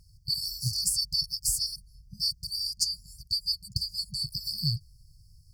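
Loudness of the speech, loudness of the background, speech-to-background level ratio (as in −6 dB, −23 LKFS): −29.0 LKFS, −47.0 LKFS, 18.0 dB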